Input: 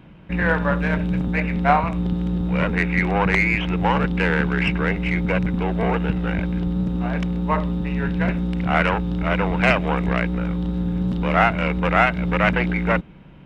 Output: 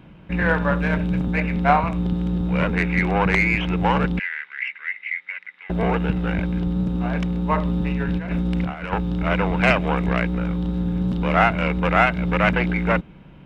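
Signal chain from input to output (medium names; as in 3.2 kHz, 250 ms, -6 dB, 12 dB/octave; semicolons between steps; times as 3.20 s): 4.19–5.70 s: ladder band-pass 2.1 kHz, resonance 80%; 7.65–8.93 s: compressor with a negative ratio -23 dBFS, ratio -0.5; band-stop 1.9 kHz, Q 29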